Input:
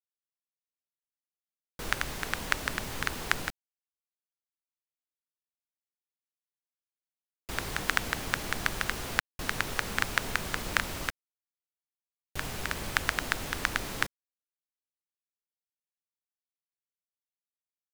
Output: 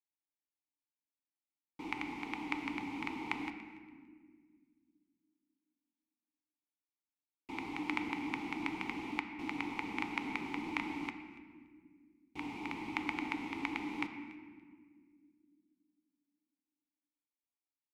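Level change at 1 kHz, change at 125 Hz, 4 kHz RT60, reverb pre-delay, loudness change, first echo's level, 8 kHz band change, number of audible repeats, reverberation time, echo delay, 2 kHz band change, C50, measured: -5.5 dB, -13.5 dB, 1.1 s, 3 ms, -7.5 dB, -20.0 dB, -23.5 dB, 1, 1.8 s, 286 ms, -10.0 dB, 8.0 dB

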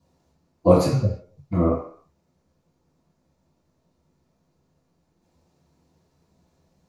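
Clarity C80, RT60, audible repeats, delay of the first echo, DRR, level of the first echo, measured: 9.0 dB, 0.55 s, no echo, no echo, -15.0 dB, no echo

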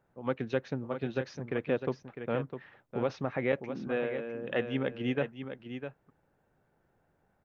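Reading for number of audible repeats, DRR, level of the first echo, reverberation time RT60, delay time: 1, no reverb, -9.0 dB, no reverb, 654 ms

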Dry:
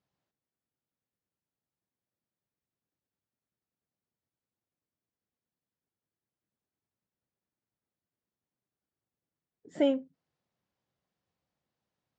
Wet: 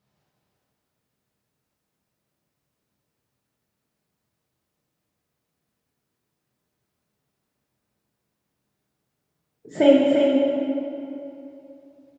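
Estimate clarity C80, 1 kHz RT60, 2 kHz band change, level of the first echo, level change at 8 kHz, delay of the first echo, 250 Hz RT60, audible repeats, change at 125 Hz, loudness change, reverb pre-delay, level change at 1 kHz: -1.5 dB, 2.8 s, +15.0 dB, -5.0 dB, no reading, 346 ms, 2.9 s, 1, +16.5 dB, +10.5 dB, 3 ms, +15.0 dB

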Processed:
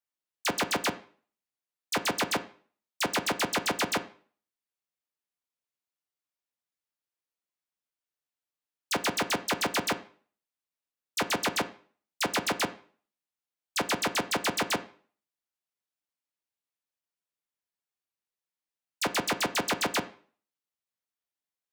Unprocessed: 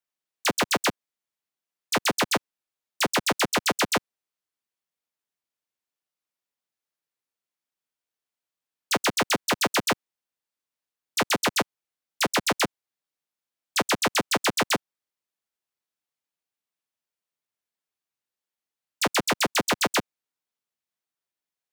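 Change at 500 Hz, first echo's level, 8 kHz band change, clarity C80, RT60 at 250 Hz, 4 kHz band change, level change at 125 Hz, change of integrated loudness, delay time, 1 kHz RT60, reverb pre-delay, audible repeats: -4.5 dB, no echo, -5.0 dB, 20.5 dB, 0.45 s, -5.0 dB, -4.5 dB, -4.5 dB, no echo, 0.45 s, 5 ms, no echo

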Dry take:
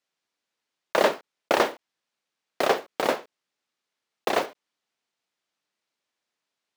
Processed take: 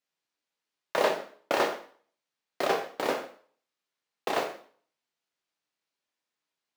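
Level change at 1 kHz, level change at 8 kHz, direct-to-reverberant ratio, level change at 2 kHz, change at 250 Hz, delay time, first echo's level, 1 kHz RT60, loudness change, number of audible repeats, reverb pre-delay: -4.0 dB, -4.0 dB, 2.5 dB, -4.0 dB, -4.5 dB, no echo, no echo, 0.45 s, -4.5 dB, no echo, 5 ms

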